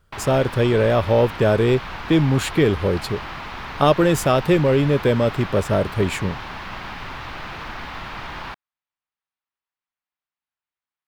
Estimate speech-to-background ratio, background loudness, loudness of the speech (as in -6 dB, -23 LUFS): 13.0 dB, -32.5 LUFS, -19.5 LUFS